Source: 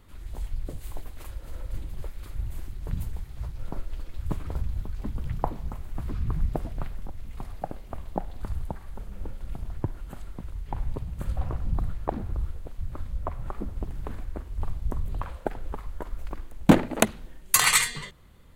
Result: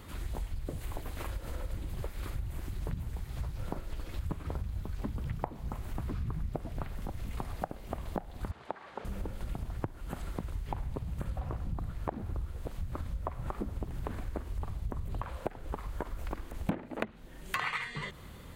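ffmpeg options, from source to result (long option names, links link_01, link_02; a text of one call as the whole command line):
ffmpeg -i in.wav -filter_complex "[0:a]asettb=1/sr,asplit=3[link_01][link_02][link_03];[link_01]atrim=end=8.514[link_04];[link_02]atrim=start=8.51:end=9.05,asetpts=PTS-STARTPTS,afade=type=in:duration=0.004:curve=qsin,afade=type=out:start_time=0.536:duration=0.004:curve=qsin,highpass=400,lowpass=3600[link_05];[link_03]atrim=start=9.046[link_06];[link_04][link_05]acrossfade=duration=0.004:curve1=hsin:curve2=qsin[link_07];[link_07][link_06]acrossfade=duration=0.004:curve1=qsin:curve2=hsin,acrossover=split=2900[link_08][link_09];[link_09]acompressor=threshold=-56dB:ratio=4:attack=1:release=60[link_10];[link_08][link_10]amix=inputs=2:normalize=0,highpass=frequency=63:poles=1,acompressor=threshold=-42dB:ratio=6,volume=9dB" out.wav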